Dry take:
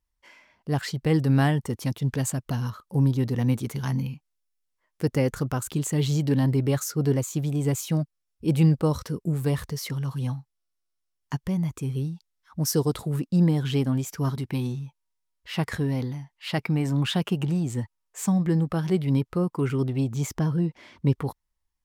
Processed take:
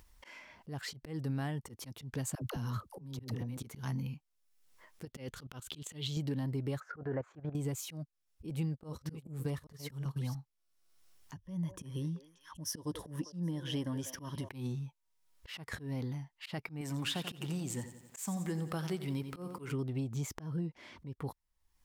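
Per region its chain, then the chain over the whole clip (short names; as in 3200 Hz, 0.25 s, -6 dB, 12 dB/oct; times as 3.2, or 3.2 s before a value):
2.35–3.57 negative-ratio compressor -32 dBFS + dispersion lows, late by 69 ms, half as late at 470 Hz
5.05–6.17 level quantiser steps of 15 dB + bell 3300 Hz +12.5 dB 0.85 oct
6.8–7.55 level quantiser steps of 13 dB + synth low-pass 1600 Hz, resonance Q 4.5 + bell 650 Hz +10.5 dB 1.3 oct
8.5–10.35 reverse delay 0.39 s, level -10 dB + gate -30 dBFS, range -18 dB
11.35–14.49 ripple EQ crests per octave 1.2, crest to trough 10 dB + delay with a stepping band-pass 0.194 s, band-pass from 550 Hz, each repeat 1.4 oct, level -9.5 dB
16.81–19.72 tilt +2 dB/oct + lo-fi delay 88 ms, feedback 55%, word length 9-bit, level -12 dB
whole clip: compressor 5:1, threshold -28 dBFS; auto swell 0.137 s; upward compressor, threshold -38 dBFS; gain -5 dB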